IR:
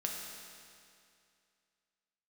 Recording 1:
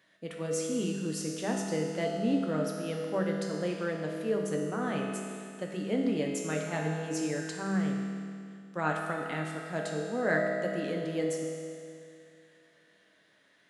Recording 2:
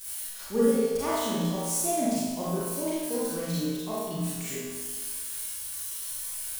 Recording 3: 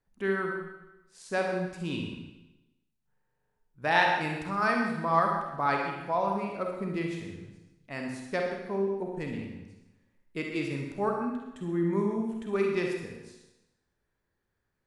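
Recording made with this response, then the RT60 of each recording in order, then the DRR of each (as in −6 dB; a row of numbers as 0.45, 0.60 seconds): 1; 2.4, 1.4, 1.0 seconds; −1.0, −10.0, 0.5 decibels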